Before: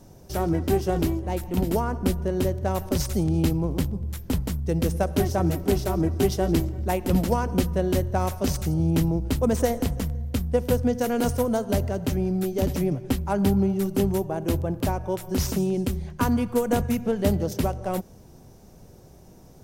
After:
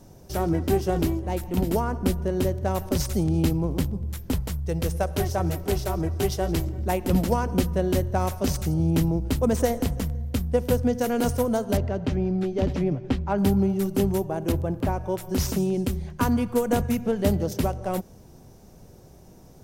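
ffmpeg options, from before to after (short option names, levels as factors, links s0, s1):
-filter_complex "[0:a]asettb=1/sr,asplit=3[s0][s1][s2];[s0]atrim=end=4.344[s3];[s1]atrim=start=4.34:end=6.67,asetpts=PTS-STARTPTS,afade=t=in:d=0.004:c=qsin,afade=t=out:st=2.326:d=0.004:c=qsin,equalizer=f=250:w=1.5:g=-9[s4];[s2]atrim=start=6.666[s5];[s3][s4]acrossfade=d=0.004:c1=hsin:c2=qsin[s6];[s6][s5]acrossfade=d=0.004:c1=qsin:c2=hsin,asettb=1/sr,asplit=3[s7][s8][s9];[s7]atrim=end=11.774[s10];[s8]atrim=start=11.77:end=13.38,asetpts=PTS-STARTPTS,afade=t=in:d=0.004:c=qsin,afade=t=out:st=1.606:d=0.004:c=qsin,lowpass=3900[s11];[s9]atrim=start=13.376[s12];[s10][s11]acrossfade=d=0.004:c1=hsin:c2=qsin[s13];[s13][s12]acrossfade=d=0.004:c1=qsin:c2=hsin,asettb=1/sr,asplit=3[s14][s15][s16];[s14]atrim=end=14.524[s17];[s15]atrim=start=14.52:end=15.18,asetpts=PTS-STARTPTS,afade=t=in:d=0.004:c=qsin,afade=t=out:st=0.656:d=0.004:c=qsin,acrossover=split=2600[s18][s19];[s19]acompressor=threshold=0.00447:ratio=4:attack=1:release=60[s20];[s18][s20]amix=inputs=2:normalize=0[s21];[s16]atrim=start=15.176[s22];[s17][s21]acrossfade=d=0.004:c1=hsin:c2=qsin[s23];[s23][s22]acrossfade=d=0.004:c1=qsin:c2=hsin"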